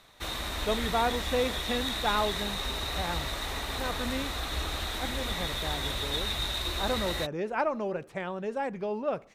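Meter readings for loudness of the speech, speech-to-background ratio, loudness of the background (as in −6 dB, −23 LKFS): −33.5 LKFS, −1.5 dB, −32.0 LKFS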